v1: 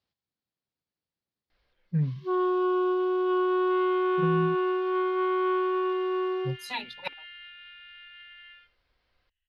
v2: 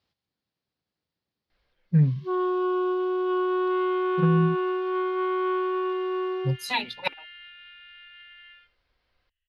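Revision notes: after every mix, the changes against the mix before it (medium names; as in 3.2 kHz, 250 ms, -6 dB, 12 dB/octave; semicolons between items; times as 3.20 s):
speech +7.0 dB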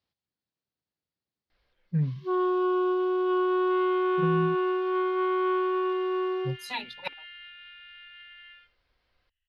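speech -7.0 dB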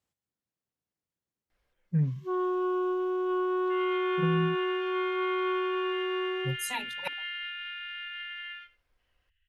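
first sound -3.5 dB; second sound +11.0 dB; master: add resonant high shelf 5.9 kHz +10 dB, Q 3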